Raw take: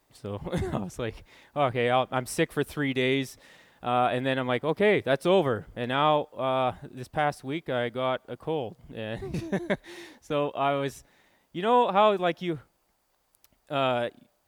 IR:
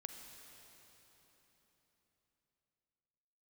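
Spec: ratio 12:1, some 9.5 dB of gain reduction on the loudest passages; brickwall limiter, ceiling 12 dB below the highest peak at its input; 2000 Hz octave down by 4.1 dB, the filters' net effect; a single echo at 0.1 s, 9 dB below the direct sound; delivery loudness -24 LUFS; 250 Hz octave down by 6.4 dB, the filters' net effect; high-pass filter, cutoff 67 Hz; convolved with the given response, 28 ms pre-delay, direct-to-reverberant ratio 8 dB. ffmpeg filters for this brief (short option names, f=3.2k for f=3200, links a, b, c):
-filter_complex "[0:a]highpass=67,equalizer=f=250:t=o:g=-9,equalizer=f=2k:t=o:g=-5,acompressor=threshold=-28dB:ratio=12,alimiter=level_in=5.5dB:limit=-24dB:level=0:latency=1,volume=-5.5dB,aecho=1:1:100:0.355,asplit=2[a][b];[1:a]atrim=start_sample=2205,adelay=28[c];[b][c]afir=irnorm=-1:irlink=0,volume=-4.5dB[d];[a][d]amix=inputs=2:normalize=0,volume=15.5dB"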